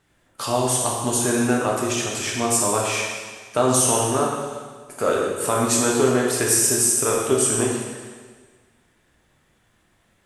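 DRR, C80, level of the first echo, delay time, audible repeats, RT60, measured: −3.0 dB, 2.5 dB, no echo audible, no echo audible, no echo audible, 1.5 s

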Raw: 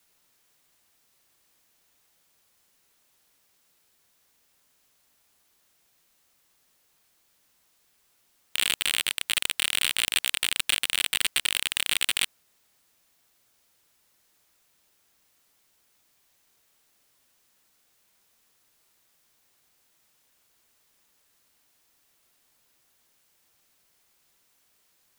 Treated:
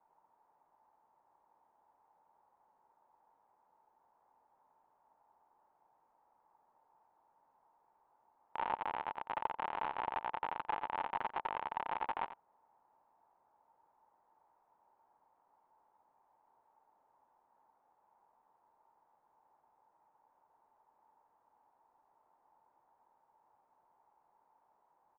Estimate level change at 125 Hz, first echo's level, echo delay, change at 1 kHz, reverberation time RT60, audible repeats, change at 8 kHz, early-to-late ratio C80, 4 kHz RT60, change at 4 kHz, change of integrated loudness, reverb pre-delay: −9.5 dB, −13.0 dB, 89 ms, +7.5 dB, no reverb audible, 1, below −40 dB, no reverb audible, no reverb audible, −32.0 dB, −14.5 dB, no reverb audible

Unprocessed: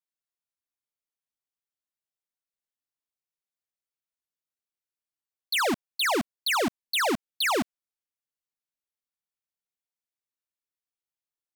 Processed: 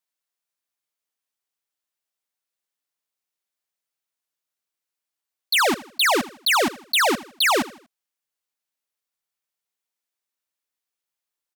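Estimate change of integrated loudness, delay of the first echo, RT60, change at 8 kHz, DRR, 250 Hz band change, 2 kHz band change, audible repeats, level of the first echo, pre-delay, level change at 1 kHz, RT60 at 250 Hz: +6.5 dB, 80 ms, no reverb audible, +7.0 dB, no reverb audible, +3.0 dB, +7.0 dB, 3, −18.0 dB, no reverb audible, +6.5 dB, no reverb audible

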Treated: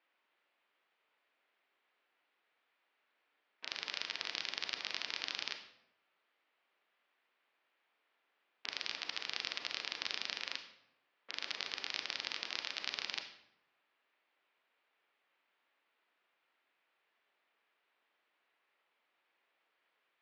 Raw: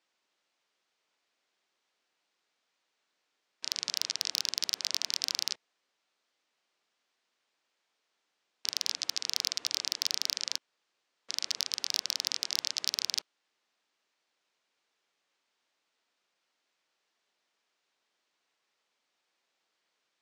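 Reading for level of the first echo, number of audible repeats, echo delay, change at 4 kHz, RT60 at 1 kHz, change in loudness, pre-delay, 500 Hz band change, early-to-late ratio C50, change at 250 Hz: no echo audible, no echo audible, no echo audible, −8.0 dB, 0.75 s, −8.0 dB, 30 ms, +0.5 dB, 9.0 dB, −1.5 dB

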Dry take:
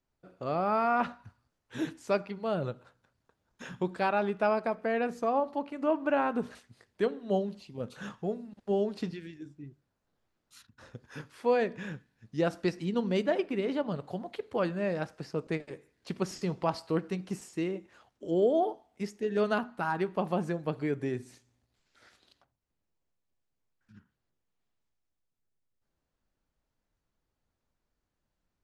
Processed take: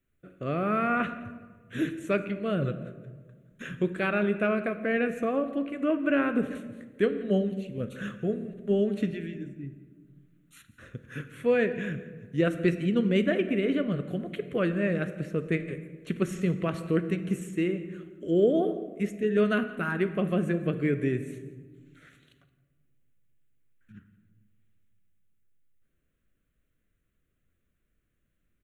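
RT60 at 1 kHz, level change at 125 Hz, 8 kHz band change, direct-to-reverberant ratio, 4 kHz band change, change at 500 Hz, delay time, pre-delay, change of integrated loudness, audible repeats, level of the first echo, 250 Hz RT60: 1.3 s, +6.5 dB, can't be measured, 11.0 dB, +2.0 dB, +2.5 dB, 171 ms, 14 ms, +3.5 dB, 1, −20.0 dB, 2.2 s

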